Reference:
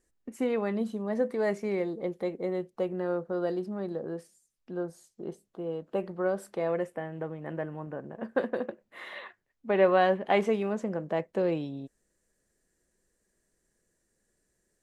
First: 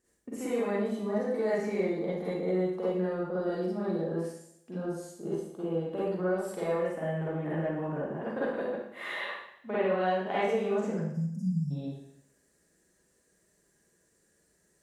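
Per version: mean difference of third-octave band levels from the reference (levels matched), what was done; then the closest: 7.0 dB: spectral delete 10.95–11.71, 240–4800 Hz; HPF 57 Hz; compressor 3:1, threshold -35 dBFS, peak gain reduction 13.5 dB; Schroeder reverb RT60 0.74 s, DRR -9 dB; gain -2.5 dB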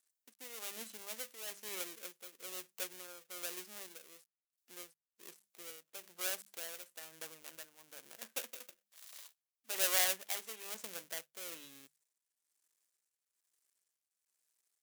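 17.0 dB: switching dead time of 0.28 ms; differentiator; notches 50/100/150/200 Hz; tremolo 1.1 Hz, depth 67%; gain +4.5 dB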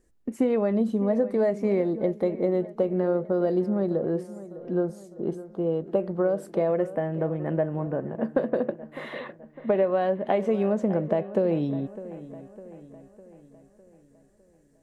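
4.0 dB: dynamic EQ 610 Hz, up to +8 dB, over -45 dBFS, Q 6.4; compressor 6:1, threshold -28 dBFS, peak gain reduction 14 dB; tilt shelf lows +5 dB, about 770 Hz; dark delay 0.605 s, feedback 51%, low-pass 3000 Hz, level -15.5 dB; gain +6 dB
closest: third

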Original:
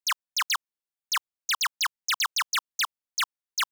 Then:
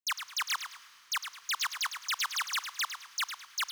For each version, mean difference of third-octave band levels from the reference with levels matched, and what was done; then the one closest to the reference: 5.0 dB: HPF 63 Hz 12 dB/oct; Schroeder reverb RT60 3.4 s, combs from 25 ms, DRR 17.5 dB; lo-fi delay 0.106 s, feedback 35%, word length 9-bit, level -8.5 dB; gain -6 dB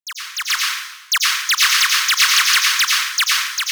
8.5 dB: HPF 1300 Hz 24 dB/oct; AGC gain up to 16 dB; plate-style reverb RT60 1 s, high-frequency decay 0.95×, pre-delay 75 ms, DRR -2.5 dB; gain -4.5 dB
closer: first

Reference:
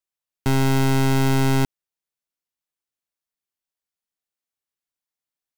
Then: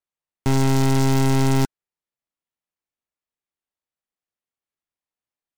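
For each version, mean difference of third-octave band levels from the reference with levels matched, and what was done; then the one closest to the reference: 2.0 dB: air absorption 110 m; notch 1500 Hz, Q 15; noise-modulated delay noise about 4900 Hz, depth 0.055 ms; gain +1 dB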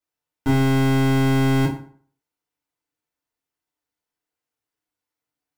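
3.5 dB: high shelf 2700 Hz -7.5 dB; limiter -23.5 dBFS, peak gain reduction 6 dB; FDN reverb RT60 0.5 s, low-frequency decay 0.95×, high-frequency decay 0.7×, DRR -7.5 dB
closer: first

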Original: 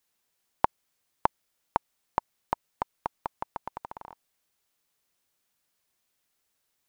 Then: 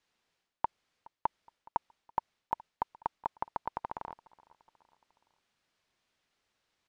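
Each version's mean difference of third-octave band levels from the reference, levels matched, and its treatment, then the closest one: 4.5 dB: LPF 4400 Hz 12 dB/oct; reverse; compressor 6:1, threshold -32 dBFS, peak gain reduction 13 dB; reverse; feedback echo 0.419 s, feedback 53%, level -24 dB; gain +3 dB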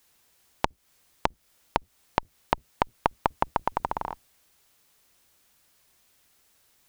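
7.0 dB: octaver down 2 oct, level -1 dB; compressor 16:1, threshold -30 dBFS, peak gain reduction 15 dB; maximiser +13.5 dB; gain -1 dB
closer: first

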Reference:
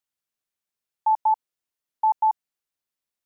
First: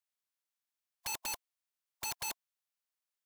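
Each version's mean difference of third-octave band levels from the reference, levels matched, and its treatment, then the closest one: 25.0 dB: spectral limiter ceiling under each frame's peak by 29 dB; HPF 670 Hz 12 dB/oct; wrapped overs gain 27.5 dB; gain -4 dB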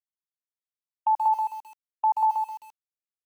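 2.0 dB: gate -27 dBFS, range -22 dB; feedback echo 0.129 s, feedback 18%, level -22 dB; lo-fi delay 0.131 s, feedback 35%, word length 8-bit, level -5 dB; gain -2 dB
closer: second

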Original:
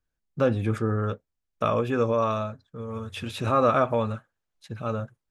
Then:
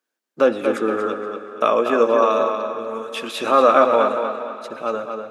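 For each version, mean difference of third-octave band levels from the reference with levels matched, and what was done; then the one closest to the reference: 6.5 dB: HPF 280 Hz 24 dB/oct; on a send: tape echo 0.238 s, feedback 43%, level -5.5 dB, low-pass 4400 Hz; on the sum: digital reverb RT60 3.5 s, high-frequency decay 0.9×, pre-delay 45 ms, DRR 13 dB; gain +7.5 dB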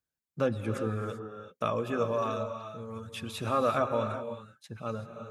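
4.0 dB: reverb removal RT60 0.54 s; HPF 90 Hz; high shelf 5600 Hz +7.5 dB; non-linear reverb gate 0.41 s rising, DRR 7 dB; gain -5.5 dB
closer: second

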